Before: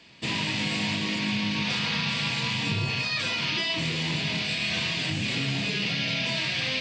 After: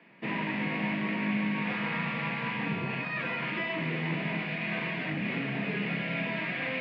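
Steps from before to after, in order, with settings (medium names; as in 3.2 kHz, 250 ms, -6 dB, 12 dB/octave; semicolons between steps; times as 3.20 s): elliptic band-pass 170–2100 Hz, stop band 80 dB; on a send: echo whose repeats swap between lows and highs 117 ms, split 1.3 kHz, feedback 86%, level -10.5 dB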